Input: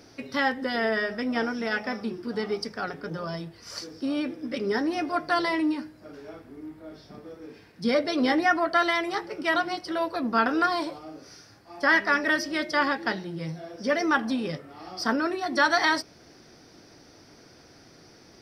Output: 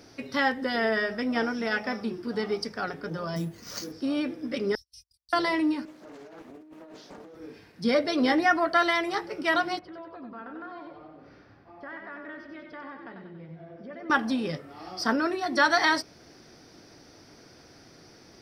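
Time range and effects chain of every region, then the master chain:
3.36–3.92 s: peaking EQ 210 Hz +9 dB 1.2 oct + careless resampling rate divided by 4×, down none, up hold
4.75–5.33 s: inverse Chebyshev band-stop 310–1300 Hz, stop band 80 dB + gate -55 dBFS, range -33 dB
5.85–7.35 s: high-pass 200 Hz 24 dB/octave + compressor with a negative ratio -46 dBFS + loudspeaker Doppler distortion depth 0.62 ms
9.79–14.10 s: distance through air 480 m + compression 2.5:1, threshold -47 dBFS + feedback delay 94 ms, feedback 52%, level -6 dB
whole clip: none

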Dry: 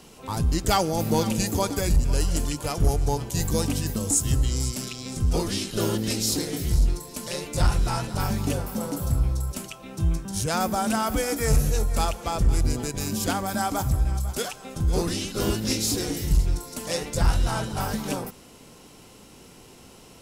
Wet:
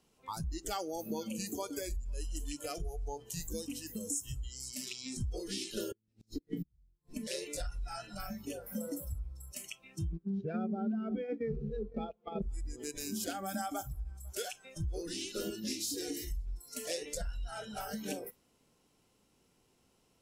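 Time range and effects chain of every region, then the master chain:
5.91–7.27 s: tone controls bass +14 dB, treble -7 dB + inverted gate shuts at -11 dBFS, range -38 dB
10.12–12.42 s: low-pass 3.9 kHz 24 dB/octave + small resonant body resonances 210/390 Hz, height 16 dB + gate -22 dBFS, range -18 dB
whole clip: dynamic bell 1.9 kHz, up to -4 dB, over -47 dBFS, Q 3.3; compression 8:1, threshold -28 dBFS; spectral noise reduction 18 dB; trim -4.5 dB

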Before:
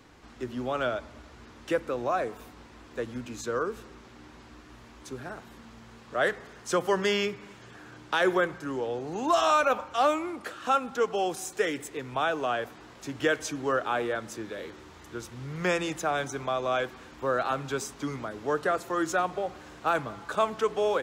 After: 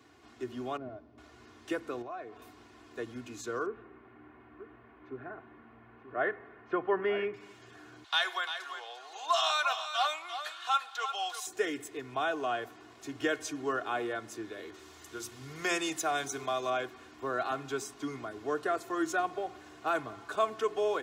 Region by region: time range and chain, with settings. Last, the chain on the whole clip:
0.77–1.18 s: one-bit delta coder 32 kbps, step -45.5 dBFS + band-pass filter 180 Hz, Q 0.77
2.02–2.42 s: low-pass 3.9 kHz + compression 2:1, threshold -42 dBFS
3.66–7.34 s: low-pass 2.2 kHz 24 dB/octave + delay 935 ms -11.5 dB
8.04–11.47 s: high-pass 740 Hz 24 dB/octave + peaking EQ 3.7 kHz +11 dB 0.7 oct + delay 346 ms -9.5 dB
14.74–16.70 s: treble shelf 3.5 kHz +10 dB + hum notches 60/120/180/240/300/360/420 Hz
whole clip: high-pass 84 Hz 24 dB/octave; comb 2.8 ms, depth 62%; trim -6 dB

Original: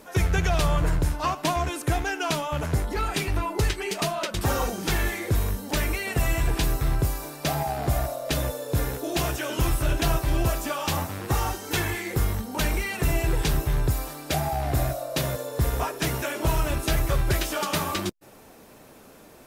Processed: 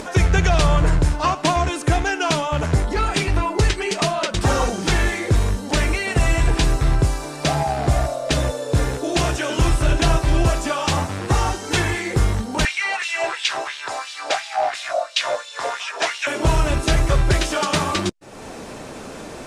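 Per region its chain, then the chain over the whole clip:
12.65–16.27 s: low-pass 7 kHz + LFO high-pass sine 2.9 Hz 640–3200 Hz
whole clip: low-pass 8.9 kHz 24 dB/octave; upward compressor, threshold -31 dBFS; trim +6.5 dB

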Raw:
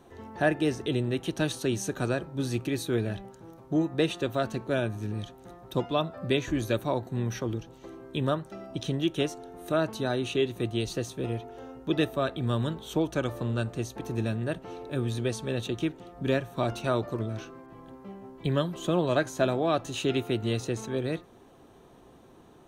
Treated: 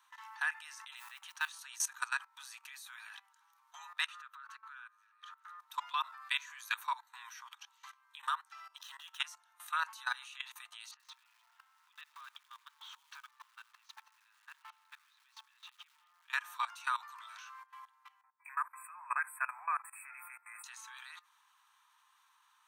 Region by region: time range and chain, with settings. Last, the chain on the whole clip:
0.96–1.59 s: treble shelf 8.2 kHz -11 dB + modulation noise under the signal 33 dB
4.06–5.60 s: treble shelf 2.4 kHz -10.5 dB + compression 3:1, threshold -44 dBFS + resonant high-pass 1.3 kHz, resonance Q 4.1
8.76–9.19 s: median filter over 5 samples + band-stop 2.3 kHz, Q 6.1
10.91–16.30 s: distance through air 210 m + compression 10:1, threshold -41 dBFS + bit-crushed delay 86 ms, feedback 80%, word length 8-bit, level -11.5 dB
18.21–20.64 s: brick-wall FIR band-stop 2.6–7.6 kHz + three bands expanded up and down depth 70%
whole clip: steep high-pass 940 Hz 72 dB/octave; dynamic bell 3.5 kHz, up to -5 dB, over -51 dBFS, Q 1.4; level held to a coarse grid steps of 19 dB; trim +6 dB

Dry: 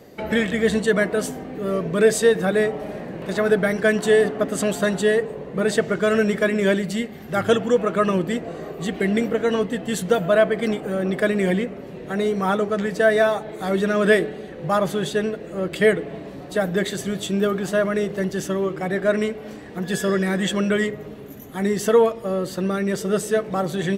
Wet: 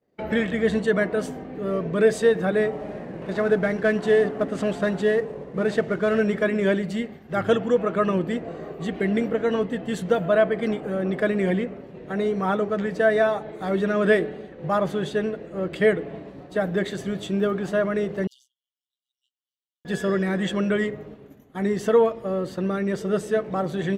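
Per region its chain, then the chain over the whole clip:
2.71–6.20 s: CVSD coder 64 kbps + treble shelf 7.6 kHz -7 dB
18.27–19.85 s: AM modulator 130 Hz, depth 90% + brick-wall FIR high-pass 2.8 kHz
whole clip: low-pass 2.6 kHz 6 dB/octave; expander -32 dBFS; trim -2 dB

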